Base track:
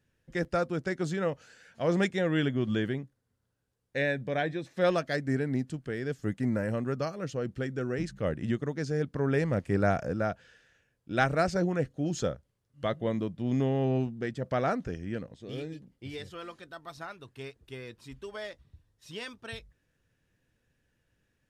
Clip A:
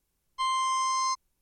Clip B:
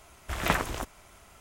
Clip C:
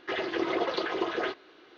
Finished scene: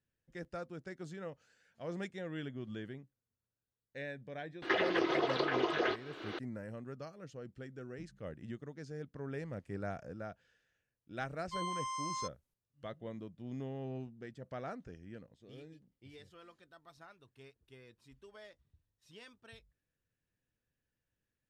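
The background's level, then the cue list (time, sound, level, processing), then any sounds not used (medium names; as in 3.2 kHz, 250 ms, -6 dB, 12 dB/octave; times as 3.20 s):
base track -14.5 dB
4.62 s: add C -3 dB + three bands compressed up and down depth 100%
11.13 s: add A -12 dB
not used: B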